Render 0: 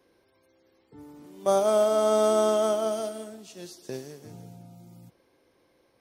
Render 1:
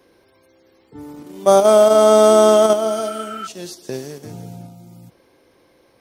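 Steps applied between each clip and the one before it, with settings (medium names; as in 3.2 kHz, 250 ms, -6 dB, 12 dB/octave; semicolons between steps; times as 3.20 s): spectral replace 2.90–3.44 s, 1.2–3.1 kHz before; in parallel at -1.5 dB: level held to a coarse grid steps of 24 dB; on the sum: trim +7 dB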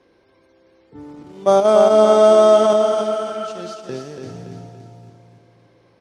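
distance through air 90 m; on a send: feedback delay 285 ms, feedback 46%, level -6 dB; on the sum: trim -1.5 dB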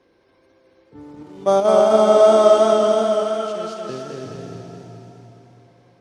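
modulated delay 210 ms, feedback 60%, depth 65 cents, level -4.5 dB; trim -2.5 dB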